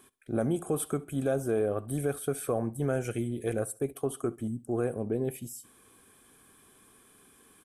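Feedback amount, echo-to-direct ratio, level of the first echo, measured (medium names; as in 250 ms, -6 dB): 37%, -22.0 dB, -22.5 dB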